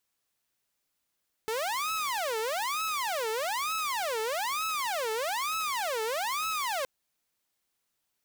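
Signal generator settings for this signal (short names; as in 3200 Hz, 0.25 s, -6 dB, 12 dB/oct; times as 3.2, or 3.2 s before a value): siren wail 436–1300 Hz 1.1/s saw -26.5 dBFS 5.37 s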